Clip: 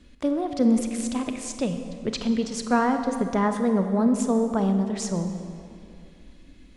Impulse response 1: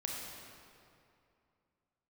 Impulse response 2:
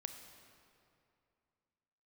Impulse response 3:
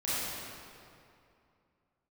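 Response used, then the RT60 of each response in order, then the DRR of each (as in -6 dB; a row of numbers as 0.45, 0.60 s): 2; 2.6, 2.6, 2.6 s; -2.0, 6.5, -11.5 dB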